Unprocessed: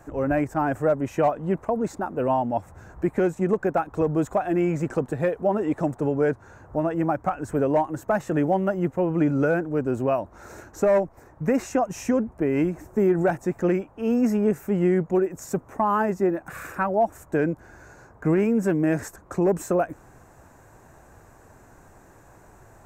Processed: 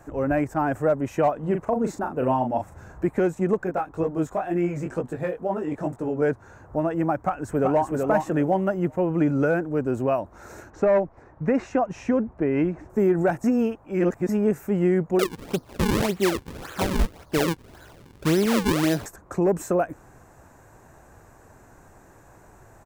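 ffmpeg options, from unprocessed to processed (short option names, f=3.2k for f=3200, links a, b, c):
-filter_complex "[0:a]asettb=1/sr,asplit=3[a][b][c];[a]atrim=end=1.394[d];[b]atrim=start=1.39:end=3.06,asetpts=PTS-STARTPTS,afade=t=in:d=0.004:c=qsin,afade=t=out:st=1.666:d=0.004:c=qsin,asplit=2[e][f];[f]adelay=39,volume=-6.5dB[g];[e][g]amix=inputs=2:normalize=0,atrim=end_sample=73647[h];[c]atrim=start=3.056[i];[d][h]acrossfade=d=0.004:c1=hsin:c2=qsin[j];[j][i]acrossfade=d=0.004:c1=qsin:c2=hsin,asettb=1/sr,asplit=3[k][l][m];[k]atrim=end=3.644[n];[l]atrim=start=3.64:end=6.22,asetpts=PTS-STARTPTS,afade=t=in:d=0.004:c=qsin,afade=t=out:st=2.576:d=0.004:c=qsin,flanger=delay=16.5:depth=5.3:speed=2.1[o];[m]atrim=start=6.216[p];[n][o]acrossfade=d=0.004:c1=hsin:c2=qsin[q];[q][p]acrossfade=d=0.004:c1=qsin:c2=hsin,asplit=2[r][s];[s]afade=t=in:st=7.2:d=0.01,afade=t=out:st=7.92:d=0.01,aecho=0:1:380|760|1140:0.668344|0.133669|0.0267338[t];[r][t]amix=inputs=2:normalize=0,asettb=1/sr,asplit=3[u][v][w];[u]atrim=end=10.704[x];[v]atrim=start=10.7:end=12.9,asetpts=PTS-STARTPTS,afade=t=in:d=0.004:c=qsin,afade=t=out:st=2.196:d=0.004:c=qsin,lowpass=3.6k[y];[w]atrim=start=12.896[z];[x][y]acrossfade=d=0.004:c1=hsin:c2=qsin[aa];[aa][z]acrossfade=d=0.004:c1=qsin:c2=hsin,asettb=1/sr,asplit=3[ab][ac][ad];[ab]atrim=end=15.194[ae];[ac]atrim=start=15.19:end=19.06,asetpts=PTS-STARTPTS,afade=t=in:d=0.004:c=qsin,afade=t=out:st=3.866:d=0.004:c=qsin,acrusher=samples=39:mix=1:aa=0.000001:lfo=1:lforange=62.4:lforate=1.8[af];[ad]atrim=start=19.056[ag];[ae][af]acrossfade=d=0.004:c1=hsin:c2=qsin[ah];[ah][ag]acrossfade=d=0.004:c1=qsin:c2=hsin,asplit=3[ai][aj][ak];[ai]atrim=end=13.442[al];[aj]atrim=start=13.438:end=14.292,asetpts=PTS-STARTPTS,areverse[am];[ak]atrim=start=14.288[an];[al][am]acrossfade=d=0.004:c1=hsin:c2=hsin[ao];[ao][an]acrossfade=d=0.004:c1=hsin:c2=hsin"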